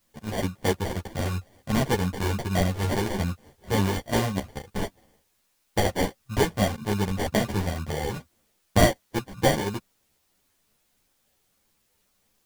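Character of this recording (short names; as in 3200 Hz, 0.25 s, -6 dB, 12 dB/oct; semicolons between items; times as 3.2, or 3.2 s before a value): aliases and images of a low sample rate 1300 Hz, jitter 0%; tremolo triangle 3.2 Hz, depth 45%; a quantiser's noise floor 12-bit, dither triangular; a shimmering, thickened sound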